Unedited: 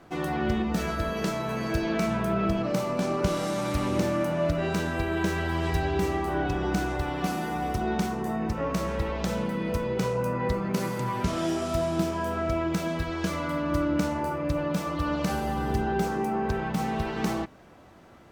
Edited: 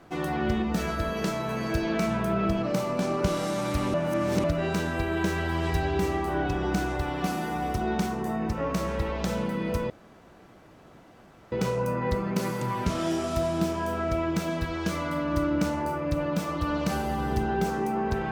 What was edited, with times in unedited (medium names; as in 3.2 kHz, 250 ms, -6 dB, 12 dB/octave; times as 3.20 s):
3.94–4.44 s: reverse
9.90 s: insert room tone 1.62 s